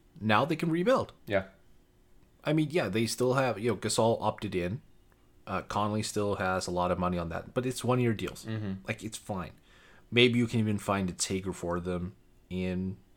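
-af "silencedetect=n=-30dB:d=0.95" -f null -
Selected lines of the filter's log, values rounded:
silence_start: 1.41
silence_end: 2.47 | silence_duration: 1.06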